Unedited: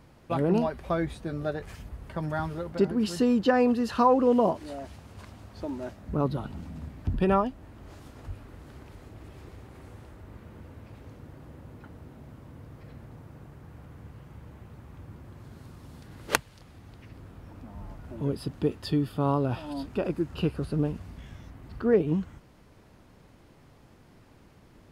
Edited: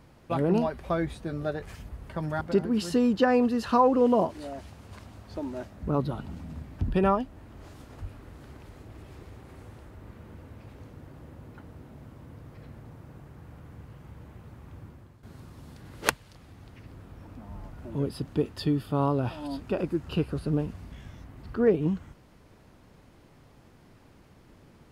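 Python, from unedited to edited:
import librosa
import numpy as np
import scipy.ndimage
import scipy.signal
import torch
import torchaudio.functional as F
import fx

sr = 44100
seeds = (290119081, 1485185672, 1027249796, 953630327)

y = fx.edit(x, sr, fx.cut(start_s=2.41, length_s=0.26),
    fx.fade_out_to(start_s=15.08, length_s=0.41, floor_db=-12.5), tone=tone)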